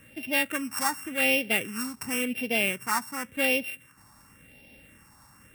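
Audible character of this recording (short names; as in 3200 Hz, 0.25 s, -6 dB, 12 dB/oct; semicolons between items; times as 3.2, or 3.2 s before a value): a buzz of ramps at a fixed pitch in blocks of 16 samples; phasing stages 4, 0.91 Hz, lowest notch 490–1200 Hz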